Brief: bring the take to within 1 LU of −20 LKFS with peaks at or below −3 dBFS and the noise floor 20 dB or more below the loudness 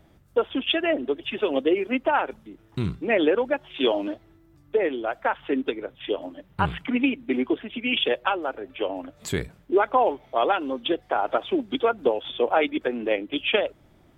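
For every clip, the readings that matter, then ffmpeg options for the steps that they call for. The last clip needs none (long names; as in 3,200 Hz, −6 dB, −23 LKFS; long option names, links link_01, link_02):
integrated loudness −25.5 LKFS; sample peak −7.5 dBFS; target loudness −20.0 LKFS
→ -af "volume=5.5dB,alimiter=limit=-3dB:level=0:latency=1"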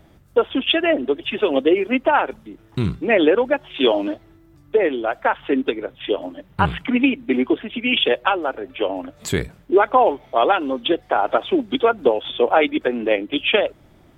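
integrated loudness −20.0 LKFS; sample peak −3.0 dBFS; background noise floor −51 dBFS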